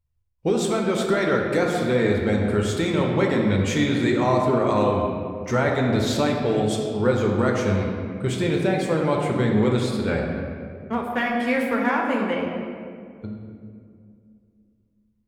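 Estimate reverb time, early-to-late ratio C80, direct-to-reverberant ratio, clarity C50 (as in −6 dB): 2.3 s, 3.0 dB, −1.0 dB, 2.0 dB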